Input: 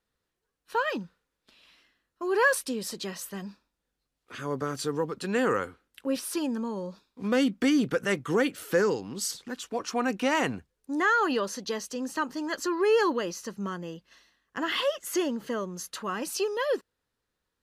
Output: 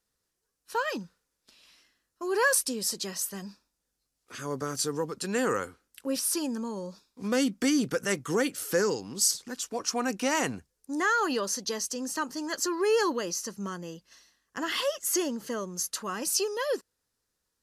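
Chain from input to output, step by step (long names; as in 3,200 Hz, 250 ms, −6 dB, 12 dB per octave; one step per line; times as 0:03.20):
flat-topped bell 7,800 Hz +10 dB
level −2 dB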